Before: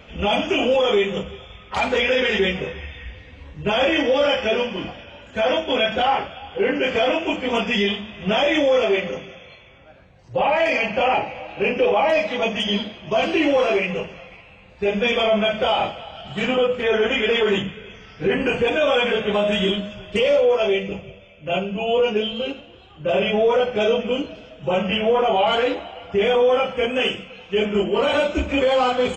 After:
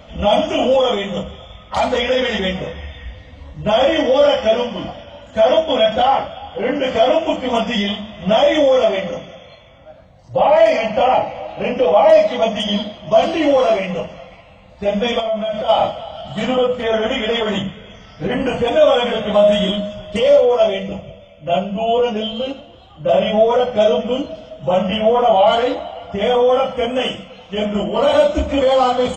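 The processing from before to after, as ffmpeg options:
-filter_complex "[0:a]asplit=3[a][b][c];[a]afade=t=out:st=15.19:d=0.02[d];[b]acompressor=threshold=-24dB:ratio=12:attack=3.2:release=140:knee=1:detection=peak,afade=t=in:st=15.19:d=0.02,afade=t=out:st=15.68:d=0.02[e];[c]afade=t=in:st=15.68:d=0.02[f];[d][e][f]amix=inputs=3:normalize=0,equalizer=f=400:t=o:w=0.33:g=-12,equalizer=f=630:t=o:w=0.33:g=7,equalizer=f=1.6k:t=o:w=0.33:g=-7,equalizer=f=2.5k:t=o:w=0.33:g=-11,volume=4.5dB"

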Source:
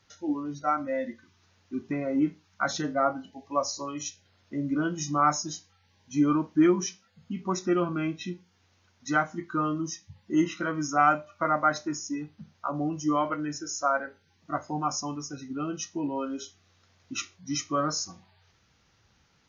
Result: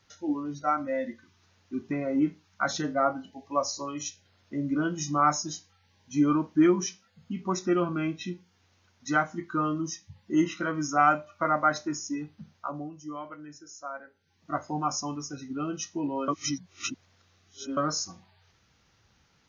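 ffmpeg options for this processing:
-filter_complex "[0:a]asplit=5[a][b][c][d][e];[a]atrim=end=12.91,asetpts=PTS-STARTPTS,afade=t=out:st=12.53:d=0.38:silence=0.237137[f];[b]atrim=start=12.91:end=14.13,asetpts=PTS-STARTPTS,volume=-12.5dB[g];[c]atrim=start=14.13:end=16.282,asetpts=PTS-STARTPTS,afade=t=in:d=0.38:silence=0.237137[h];[d]atrim=start=16.278:end=17.772,asetpts=PTS-STARTPTS,areverse[i];[e]atrim=start=17.768[j];[f][g][h]concat=n=3:v=0:a=1[k];[k][i]acrossfade=d=0.004:c1=hsin:c2=hsin[l];[l][j]acrossfade=d=0.004:c1=hsin:c2=hsin"

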